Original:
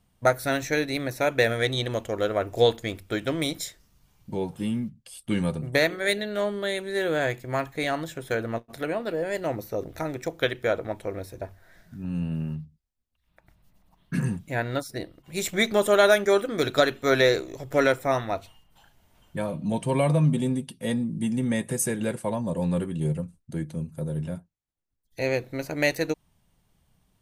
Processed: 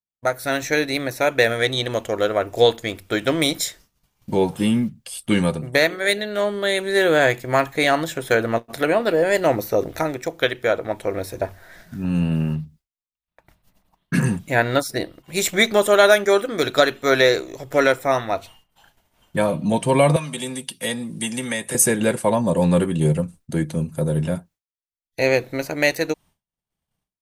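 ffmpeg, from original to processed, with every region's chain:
ffmpeg -i in.wav -filter_complex "[0:a]asettb=1/sr,asplit=3[link_01][link_02][link_03];[link_01]atrim=end=20.164[link_04];[link_02]atrim=start=20.16:end=21.75,asetpts=PTS-STARTPTS,afade=type=in:duration=0.004:curve=qsin,afade=type=out:start_time=1.586:duration=0.004:curve=qsin,tiltshelf=frequency=1100:gain=-6,acrossover=split=120|340|840[link_05][link_06][link_07][link_08];[link_05]acompressor=threshold=-50dB:ratio=3[link_09];[link_06]acompressor=threshold=-44dB:ratio=3[link_10];[link_07]acompressor=threshold=-40dB:ratio=3[link_11];[link_08]acompressor=threshold=-38dB:ratio=3[link_12];[link_09][link_10][link_11][link_12]amix=inputs=4:normalize=0[link_13];[link_03]atrim=start=21.746[link_14];[link_04][link_13]acrossfade=duration=0.004:curve1=hsin:curve2=qsin[link_15];[link_15][link_14]acrossfade=duration=0.004:curve1=qsin:curve2=hsin,dynaudnorm=framelen=300:gausssize=3:maxgain=14dB,agate=range=-33dB:threshold=-38dB:ratio=3:detection=peak,lowshelf=frequency=230:gain=-7,volume=-1dB" out.wav

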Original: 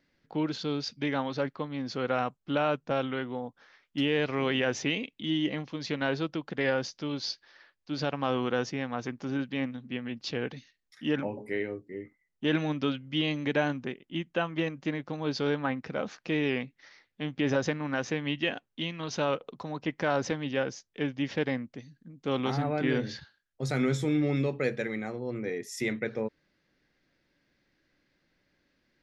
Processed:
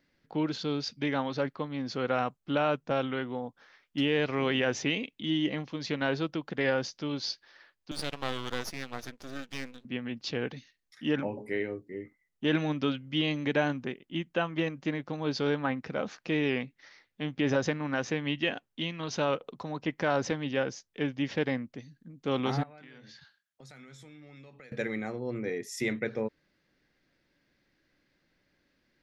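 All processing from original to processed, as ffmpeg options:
ffmpeg -i in.wav -filter_complex "[0:a]asettb=1/sr,asplit=3[link_01][link_02][link_03];[link_01]atrim=end=7.914[link_04];[link_02]atrim=start=7.91:end=9.85,asetpts=PTS-STARTPTS,afade=type=in:duration=0.004:curve=qsin,afade=type=out:start_time=1.936:duration=0.004:curve=qsin,highpass=130,lowpass=5800,aemphasis=mode=production:type=riaa,aeval=exprs='max(val(0),0)':channel_layout=same[link_05];[link_03]atrim=start=9.846[link_06];[link_04][link_05]acrossfade=duration=0.004:curve1=hsin:curve2=qsin[link_07];[link_07][link_06]acrossfade=duration=0.004:curve1=qsin:curve2=hsin,asettb=1/sr,asplit=3[link_08][link_09][link_10];[link_08]atrim=end=22.634[link_11];[link_09]atrim=start=22.63:end=24.72,asetpts=PTS-STARTPTS,afade=type=in:duration=0.004:curve=qsin,afade=type=out:start_time=2.086:duration=0.004:curve=qsin,highpass=170,equalizer=frequency=370:width_type=o:width=1.4:gain=-11,acompressor=threshold=-49dB:ratio=6:attack=3.2:release=140:knee=1:detection=peak[link_12];[link_10]atrim=start=24.716[link_13];[link_11][link_12]acrossfade=duration=0.004:curve1=hsin:curve2=qsin[link_14];[link_14][link_13]acrossfade=duration=0.004:curve1=qsin:curve2=hsin" out.wav

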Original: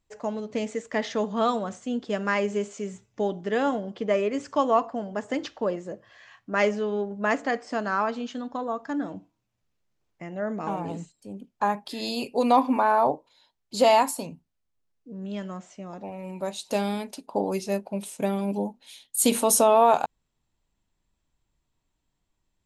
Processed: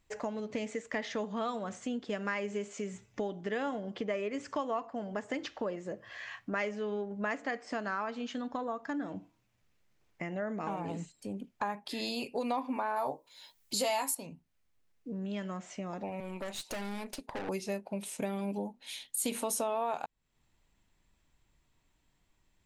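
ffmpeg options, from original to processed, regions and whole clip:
ffmpeg -i in.wav -filter_complex "[0:a]asettb=1/sr,asplit=3[link_01][link_02][link_03];[link_01]atrim=end=12.964[link_04];[link_02]atrim=start=12.96:end=14.15,asetpts=PTS-STARTPTS,afade=type=in:duration=0.004:curve=qsin,afade=type=out:start_time=1.186:duration=0.004:curve=qsin,aemphasis=mode=production:type=75kf,asplit=2[link_05][link_06];[link_06]adelay=15,volume=-7dB[link_07];[link_05][link_07]amix=inputs=2:normalize=0,atrim=end_sample=52479[link_08];[link_03]atrim=start=14.146[link_09];[link_04][link_08]acrossfade=duration=0.004:curve1=hsin:curve2=qsin[link_10];[link_10][link_09]acrossfade=duration=0.004:curve1=qsin:curve2=hsin,asettb=1/sr,asplit=3[link_11][link_12][link_13];[link_11]atrim=end=16.204[link_14];[link_12]atrim=start=16.2:end=17.49,asetpts=PTS-STARTPTS,afade=type=in:duration=0.004:curve=qsin,afade=type=out:start_time=1.286:duration=0.004:curve=qsin,highpass=frequency=190:width=0.5412,highpass=frequency=190:width=1.3066,aeval=exprs='(tanh(50.1*val(0)+0.7)-tanh(0.7))/50.1':channel_layout=same[link_15];[link_13]atrim=start=17.486[link_16];[link_14][link_15]acrossfade=duration=0.004:curve1=hsin:curve2=qsin[link_17];[link_17][link_16]acrossfade=duration=0.004:curve1=qsin:curve2=hsin,equalizer=frequency=2100:width=1.5:gain=5,acompressor=threshold=-41dB:ratio=3,volume=4dB" out.wav

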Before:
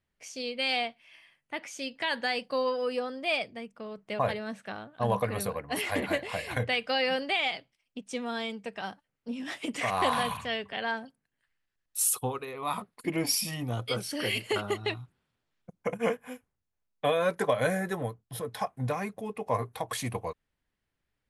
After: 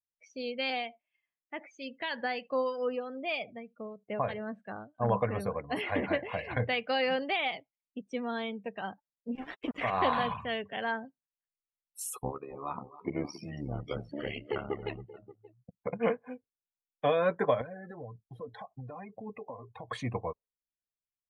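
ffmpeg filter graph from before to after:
ffmpeg -i in.wav -filter_complex "[0:a]asettb=1/sr,asplit=3[link_01][link_02][link_03];[link_01]atrim=end=0.704[link_04];[link_02]atrim=start=0.7:end=5.1,asetpts=PTS-STARTPTS,afade=type=in:duration=0.004:curve=qsin,afade=type=out:start_time=4.396:duration=0.004:curve=qsin,aecho=1:1:76:0.0891,atrim=end_sample=194040,acrossover=split=1900[link_05][link_06];[link_05]aeval=exprs='val(0)*(1-0.5/2+0.5/2*cos(2*PI*3.2*n/s))':channel_layout=same[link_07];[link_06]aeval=exprs='val(0)*(1-0.5/2-0.5/2*cos(2*PI*3.2*n/s))':channel_layout=same[link_08];[link_07][link_08]amix=inputs=2:normalize=0,aeval=exprs='0.112*(abs(mod(val(0)/0.112+3,4)-2)-1)':channel_layout=same[link_09];[link_03]atrim=start=5.096[link_10];[link_04][link_09]acrossfade=duration=0.004:curve1=hsin:curve2=qsin[link_11];[link_11][link_10]acrossfade=duration=0.004:curve1=qsin:curve2=hsin,asettb=1/sr,asplit=3[link_12][link_13][link_14];[link_12]atrim=end=9.354[link_15];[link_13]atrim=start=9.35:end=10.19,asetpts=PTS-STARTPTS,afade=type=in:duration=0.004:curve=qsin,afade=type=out:start_time=0.836:duration=0.004:curve=qsin,bandreject=frequency=50:width_type=h:width=6,bandreject=frequency=100:width_type=h:width=6,bandreject=frequency=150:width_type=h:width=6,bandreject=frequency=200:width_type=h:width=6,aeval=exprs='val(0)*gte(abs(val(0)),0.0188)':channel_layout=same[link_16];[link_14]atrim=start=10.186[link_17];[link_15][link_16]acrossfade=duration=0.004:curve1=hsin:curve2=qsin[link_18];[link_18][link_17]acrossfade=duration=0.004:curve1=qsin:curve2=hsin,asettb=1/sr,asplit=3[link_19][link_20][link_21];[link_19]atrim=end=12.224[link_22];[link_20]atrim=start=12.22:end=15.93,asetpts=PTS-STARTPTS,afade=type=in:duration=0.004:curve=qsin,afade=type=out:start_time=3.706:duration=0.004:curve=qsin,tremolo=f=71:d=0.857,highshelf=frequency=3400:gain=-9,aecho=1:1:273|580:0.178|0.15,atrim=end_sample=163611[link_23];[link_21]atrim=start=15.926[link_24];[link_22][link_23]acrossfade=duration=0.004:curve1=hsin:curve2=qsin[link_25];[link_25][link_24]acrossfade=duration=0.004:curve1=qsin:curve2=hsin,asettb=1/sr,asplit=3[link_26][link_27][link_28];[link_26]atrim=end=17.614[link_29];[link_27]atrim=start=17.61:end=19.88,asetpts=PTS-STARTPTS,afade=type=in:duration=0.004:curve=qsin,afade=type=out:start_time=2.266:duration=0.004:curve=qsin,acompressor=threshold=-39dB:ratio=12:attack=3.2:release=140:knee=1:detection=peak,aphaser=in_gain=1:out_gain=1:delay=4.3:decay=0.44:speed=1.8:type=triangular[link_30];[link_28]atrim=start=19.876[link_31];[link_29][link_30]acrossfade=duration=0.004:curve1=hsin:curve2=qsin[link_32];[link_32][link_31]acrossfade=duration=0.004:curve1=qsin:curve2=hsin,lowpass=frequency=2300:poles=1,afftdn=noise_reduction=26:noise_floor=-46" out.wav

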